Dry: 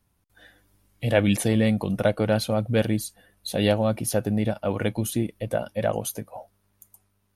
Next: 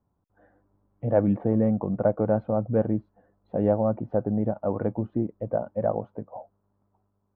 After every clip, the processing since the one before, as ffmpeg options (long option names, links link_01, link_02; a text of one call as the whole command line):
ffmpeg -i in.wav -af "lowpass=frequency=1100:width=0.5412,lowpass=frequency=1100:width=1.3066,lowshelf=frequency=77:gain=-10" out.wav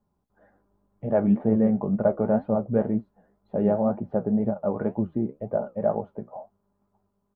ffmpeg -i in.wav -af "aecho=1:1:4.9:0.47,flanger=delay=8.2:depth=9.7:regen=58:speed=2:shape=triangular,volume=4dB" out.wav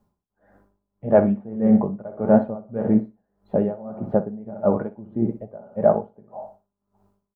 ffmpeg -i in.wav -filter_complex "[0:a]asplit=2[link_01][link_02];[link_02]aecho=0:1:60|120|180|240:0.282|0.113|0.0451|0.018[link_03];[link_01][link_03]amix=inputs=2:normalize=0,aeval=exprs='val(0)*pow(10,-22*(0.5-0.5*cos(2*PI*1.7*n/s))/20)':channel_layout=same,volume=7.5dB" out.wav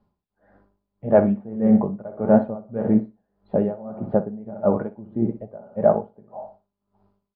ffmpeg -i in.wav -af "aresample=11025,aresample=44100" out.wav